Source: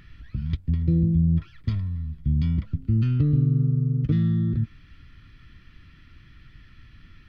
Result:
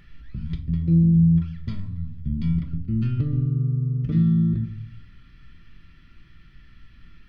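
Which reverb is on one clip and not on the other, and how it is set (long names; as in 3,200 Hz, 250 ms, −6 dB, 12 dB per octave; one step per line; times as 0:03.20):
rectangular room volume 540 cubic metres, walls furnished, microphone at 1.2 metres
level −3 dB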